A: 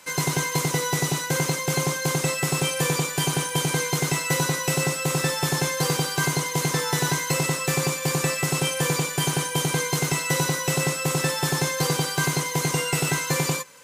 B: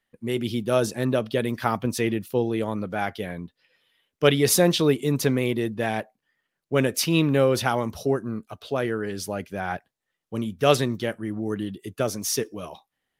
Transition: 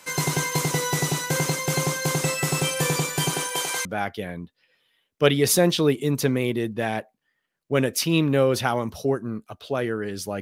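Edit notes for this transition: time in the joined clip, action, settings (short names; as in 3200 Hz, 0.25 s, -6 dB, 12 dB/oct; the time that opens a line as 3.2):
A
3.29–3.85 HPF 200 Hz -> 920 Hz
3.85 switch to B from 2.86 s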